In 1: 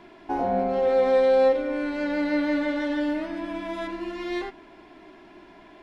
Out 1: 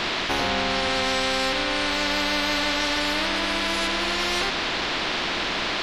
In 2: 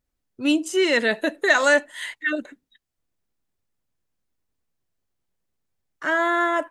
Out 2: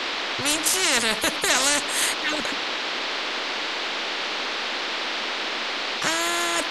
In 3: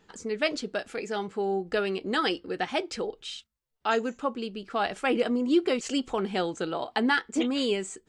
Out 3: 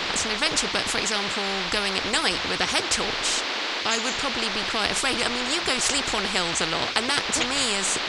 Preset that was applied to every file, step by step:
band noise 270–4100 Hz -49 dBFS; spectral compressor 4:1; match loudness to -23 LUFS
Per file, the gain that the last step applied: -1.0, -3.5, +9.5 dB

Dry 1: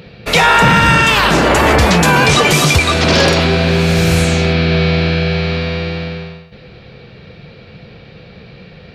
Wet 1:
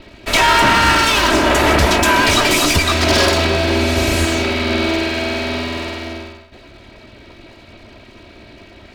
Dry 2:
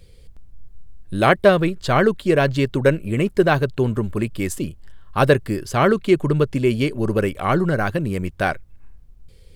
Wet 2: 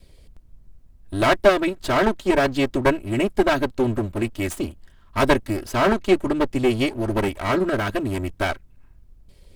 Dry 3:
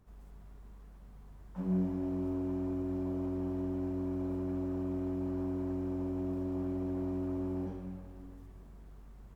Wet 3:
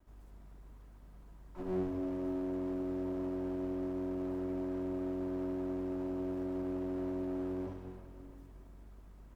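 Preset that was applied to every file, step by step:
minimum comb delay 3.1 ms; gain -1 dB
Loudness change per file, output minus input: -3.0, -2.0, -2.0 LU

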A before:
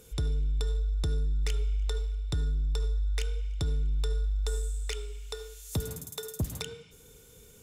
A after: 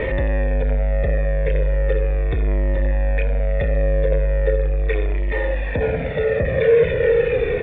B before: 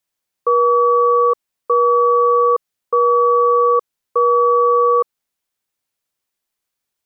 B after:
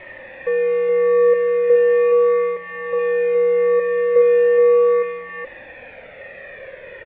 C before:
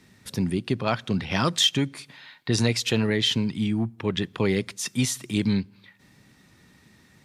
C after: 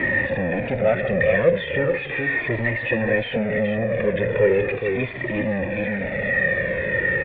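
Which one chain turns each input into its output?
zero-crossing step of -24.5 dBFS; echo 0.42 s -6.5 dB; in parallel at -4.5 dB: fuzz box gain 38 dB, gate -36 dBFS; on the sum: vocal tract filter e; cascading flanger falling 0.38 Hz; normalise peaks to -6 dBFS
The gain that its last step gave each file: +17.5, +6.0, +12.5 dB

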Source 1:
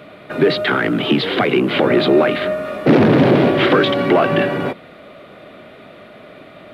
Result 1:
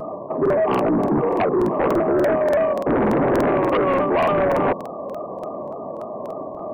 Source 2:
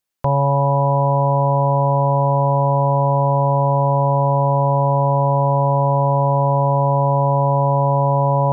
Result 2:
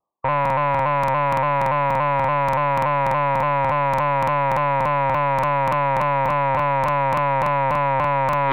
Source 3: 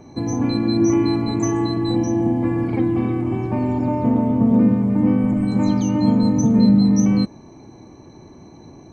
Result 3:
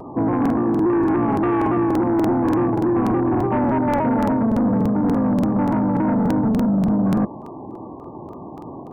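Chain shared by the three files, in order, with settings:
brick-wall FIR low-pass 1200 Hz; tilt +3.5 dB/oct; reverse; compressor 8:1, threshold -26 dBFS; reverse; sine folder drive 11 dB, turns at -13.5 dBFS; crackling interface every 0.29 s, samples 2048, repeat, from 0.41; shaped vibrato saw down 3.5 Hz, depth 100 cents; gain -1 dB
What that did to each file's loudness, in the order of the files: -4.0, -3.0, -1.0 LU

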